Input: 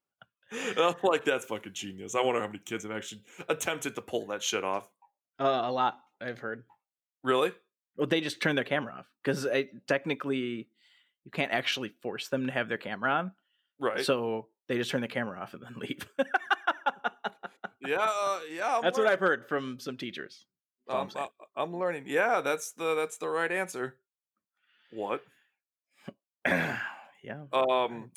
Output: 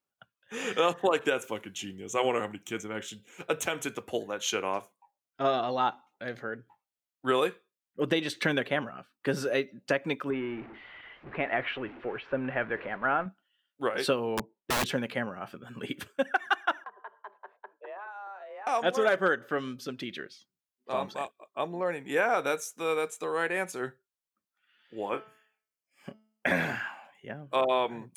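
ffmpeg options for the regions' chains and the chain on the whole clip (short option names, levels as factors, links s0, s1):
-filter_complex "[0:a]asettb=1/sr,asplit=3[s0][s1][s2];[s0]atrim=end=10.304[s3];[s1]atrim=start=10.3:end=13.26,asetpts=PTS-STARTPTS,afade=t=in:d=0.004:c=qsin,afade=t=out:st=2.956:d=0.004:c=qsin,aeval=exprs='val(0)+0.5*0.0119*sgn(val(0))':c=same,lowpass=f=2300:w=0.5412,lowpass=f=2300:w=1.3066,equalizer=f=190:w=1.8:g=-8[s4];[s2]atrim=start=13.256[s5];[s3][s4]acrossfade=d=0.004:c1=hsin:c2=qsin[s6];[s6][s5]acrossfade=d=0.004:c1=qsin:c2=hsin,asettb=1/sr,asplit=3[s7][s8][s9];[s7]atrim=end=14.374[s10];[s8]atrim=start=14.37:end=14.86,asetpts=PTS-STARTPTS,afade=t=in:d=0.004:c=qsin,afade=t=out:st=0.486:d=0.004:c=qsin,lowpass=2900,equalizer=f=200:w=0.8:g=12,aeval=exprs='(mod(12.6*val(0)+1,2)-1)/12.6':c=same[s11];[s9]atrim=start=14.856[s12];[s10][s11]acrossfade=d=0.004:c1=hsin:c2=qsin[s13];[s13][s12]acrossfade=d=0.004:c1=qsin:c2=hsin,asettb=1/sr,asplit=3[s14][s15][s16];[s14]atrim=end=16.844[s17];[s15]atrim=start=16.84:end=18.67,asetpts=PTS-STARTPTS,afade=t=in:d=0.004:c=qsin,afade=t=out:st=1.826:d=0.004:c=qsin,lowpass=1100,acompressor=threshold=0.01:ratio=5:attack=3.2:release=140:knee=1:detection=peak,afreqshift=200[s18];[s16]atrim=start=18.666[s19];[s17][s18]acrossfade=d=0.004:c1=hsin:c2=qsin[s20];[s20][s19]acrossfade=d=0.004:c1=qsin:c2=hsin,asettb=1/sr,asplit=3[s21][s22][s23];[s21]atrim=end=25.094[s24];[s22]atrim=start=25.09:end=26.47,asetpts=PTS-STARTPTS,afade=t=in:d=0.004:c=qsin,afade=t=out:st=1.376:d=0.004:c=qsin,asuperstop=centerf=3800:order=4:qfactor=5.6,asplit=2[s25][s26];[s26]adelay=29,volume=0.376[s27];[s25][s27]amix=inputs=2:normalize=0,atrim=end_sample=60858,bandreject=f=217.3:t=h:w=4,bandreject=f=434.6:t=h:w=4,bandreject=f=651.9:t=h:w=4,bandreject=f=869.2:t=h:w=4,bandreject=f=1086.5:t=h:w=4,bandreject=f=1303.8:t=h:w=4,bandreject=f=1521.1:t=h:w=4,bandreject=f=1738.4:t=h:w=4,bandreject=f=1955.7:t=h:w=4,bandreject=f=2173:t=h:w=4,bandreject=f=2390.3:t=h:w=4,bandreject=f=2607.6:t=h:w=4,bandreject=f=2824.9:t=h:w=4,bandreject=f=3042.2:t=h:w=4,bandreject=f=3259.5:t=h:w=4,bandreject=f=3476.8:t=h:w=4,bandreject=f=3694.1:t=h:w=4,bandreject=f=3911.4:t=h:w=4,bandreject=f=4128.7:t=h:w=4,bandreject=f=4346:t=h:w=4,bandreject=f=4563.3:t=h:w=4,bandreject=f=4780.6:t=h:w=4,bandreject=f=4997.9:t=h:w=4,bandreject=f=5215.2:t=h:w=4,bandreject=f=5432.5:t=h:w=4,bandreject=f=5649.8:t=h:w=4,bandreject=f=5867.1:t=h:w=4,bandreject=f=6084.4:t=h:w=4,bandreject=f=6301.7:t=h:w=4[s28];[s23]atrim=start=26.466[s29];[s24][s28]acrossfade=d=0.004:c1=hsin:c2=qsin[s30];[s30][s29]acrossfade=d=0.004:c1=qsin:c2=hsin"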